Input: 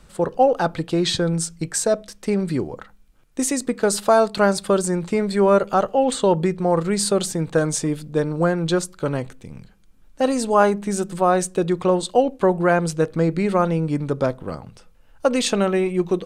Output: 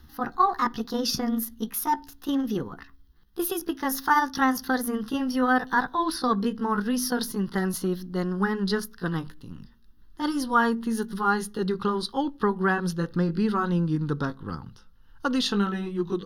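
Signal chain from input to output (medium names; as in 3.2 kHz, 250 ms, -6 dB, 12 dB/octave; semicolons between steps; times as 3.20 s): pitch bend over the whole clip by +6.5 st ending unshifted; static phaser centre 2.3 kHz, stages 6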